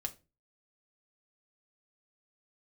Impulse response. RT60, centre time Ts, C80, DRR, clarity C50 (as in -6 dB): 0.30 s, 5 ms, 24.5 dB, 3.5 dB, 18.5 dB